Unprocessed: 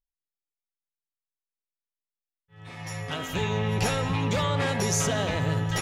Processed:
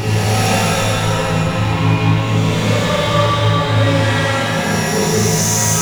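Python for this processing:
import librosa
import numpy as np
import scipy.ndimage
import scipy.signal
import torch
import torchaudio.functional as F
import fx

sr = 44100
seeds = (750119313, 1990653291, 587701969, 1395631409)

y = fx.leveller(x, sr, passes=3)
y = fx.paulstretch(y, sr, seeds[0], factor=4.6, window_s=0.25, from_s=3.76)
y = fx.rev_schroeder(y, sr, rt60_s=1.7, comb_ms=25, drr_db=-2.0)
y = y * librosa.db_to_amplitude(-1.0)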